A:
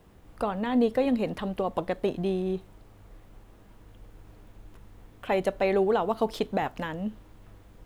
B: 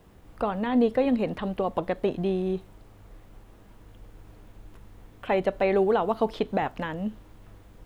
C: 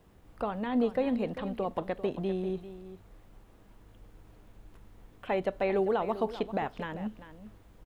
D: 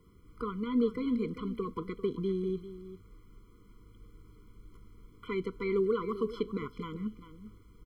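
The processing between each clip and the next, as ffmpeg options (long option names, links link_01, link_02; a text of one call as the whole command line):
ffmpeg -i in.wav -filter_complex "[0:a]acrossover=split=3900[link_01][link_02];[link_02]acompressor=threshold=-59dB:ratio=4:attack=1:release=60[link_03];[link_01][link_03]amix=inputs=2:normalize=0,volume=1.5dB" out.wav
ffmpeg -i in.wav -af "aecho=1:1:394:0.211,volume=-5.5dB" out.wav
ffmpeg -i in.wav -af "afftfilt=real='re*eq(mod(floor(b*sr/1024/490),2),0)':imag='im*eq(mod(floor(b*sr/1024/490),2),0)':win_size=1024:overlap=0.75" out.wav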